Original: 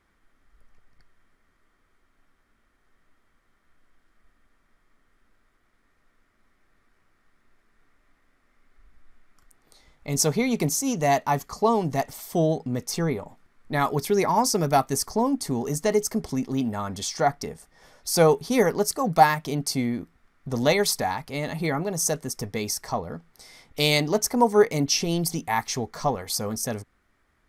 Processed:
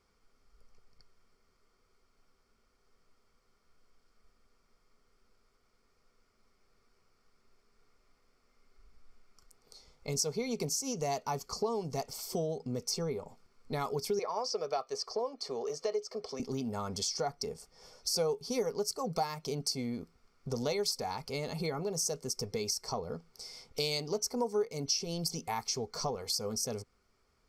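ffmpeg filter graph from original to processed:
-filter_complex "[0:a]asettb=1/sr,asplit=3[a][b][c];[a]atrim=end=14.194[d];[b]atrim=start=14.19:end=16.4,asetpts=PTS-STARTPTS,afade=t=in:d=0.004:c=qsin,afade=t=out:st=2.206:d=0.004:c=qsin,acrossover=split=6200[e][f];[f]acompressor=threshold=-37dB:ratio=4:attack=1:release=60[g];[e][g]amix=inputs=2:normalize=0,acrossover=split=330 5000:gain=0.0708 1 0.112[h][i][j];[h][i][j]amix=inputs=3:normalize=0,aecho=1:1:1.7:0.41,atrim=end_sample=97461[k];[c]atrim=start=16.396[l];[d][k]acrossfade=d=0.004:c1=hsin:c2=qsin[m];[m][l]acrossfade=d=0.004:c1=qsin:c2=hsin,superequalizer=6b=0.631:7b=2:11b=0.398:14b=3.16:15b=1.78,acompressor=threshold=-28dB:ratio=3,volume=-5dB"

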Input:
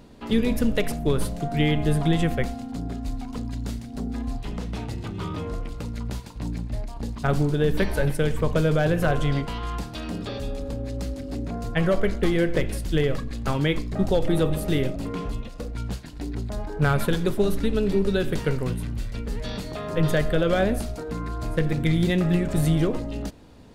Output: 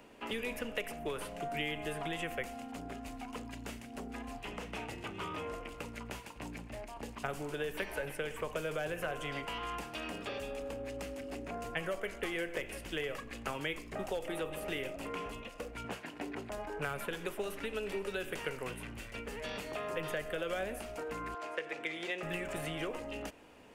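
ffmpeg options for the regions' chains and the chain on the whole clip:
-filter_complex "[0:a]asettb=1/sr,asplit=3[a][b][c];[a]atrim=end=15.844[d];[b]atrim=start=15.84:end=16.5,asetpts=PTS-STARTPTS,afade=t=in:d=0.004:c=qsin,afade=t=out:st=0.656:d=0.004:c=qsin,highpass=150,highshelf=f=3k:g=-10.5,acontrast=59[e];[c]atrim=start=16.496[f];[d][e]acrossfade=d=0.004:c1=hsin:c2=qsin[g];[g][f]acrossfade=d=0.004:c1=qsin:c2=hsin,asettb=1/sr,asplit=3[h][i][j];[h]atrim=end=21.344[k];[i]atrim=start=21.34:end=22.23,asetpts=PTS-STARTPTS,afade=t=in:d=0.004:c=qsin,afade=t=out:st=0.886:d=0.004:c=qsin,highpass=f=96:w=0.5412,highpass=f=96:w=1.3066,acrossover=split=360 6900:gain=0.0708 1 0.126[l][m][n];[l][m][n]amix=inputs=3:normalize=0[o];[j]atrim=start=22.226[p];[k][o]acrossfade=d=0.004:c1=hsin:c2=qsin[q];[q][p]acrossfade=d=0.004:c1=qsin:c2=hsin,bass=f=250:g=-15,treble=f=4k:g=6,acrossover=split=100|500|5100[r][s][t][u];[r]acompressor=threshold=-46dB:ratio=4[v];[s]acompressor=threshold=-41dB:ratio=4[w];[t]acompressor=threshold=-36dB:ratio=4[x];[u]acompressor=threshold=-42dB:ratio=4[y];[v][w][x][y]amix=inputs=4:normalize=0,highshelf=f=3.3k:t=q:w=3:g=-6,volume=-3dB"

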